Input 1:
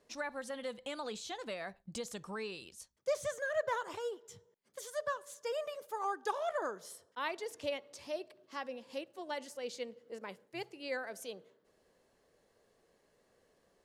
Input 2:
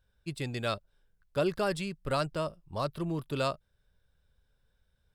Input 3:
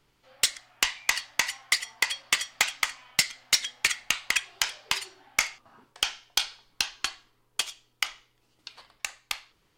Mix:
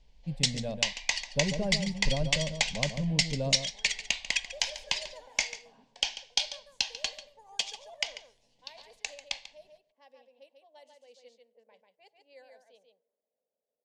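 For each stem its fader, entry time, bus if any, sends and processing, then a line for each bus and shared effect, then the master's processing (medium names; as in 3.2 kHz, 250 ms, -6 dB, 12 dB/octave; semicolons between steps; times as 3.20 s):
-12.5 dB, 1.45 s, no send, echo send -5 dB, high-pass 420 Hz 12 dB/octave; level-controlled noise filter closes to 550 Hz, open at -37 dBFS
-5.5 dB, 0.00 s, no send, echo send -7.5 dB, tilt EQ -4.5 dB/octave
0.0 dB, 0.00 s, no send, echo send -14.5 dB, low-pass 6.6 kHz 24 dB/octave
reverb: none
echo: delay 142 ms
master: static phaser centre 350 Hz, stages 6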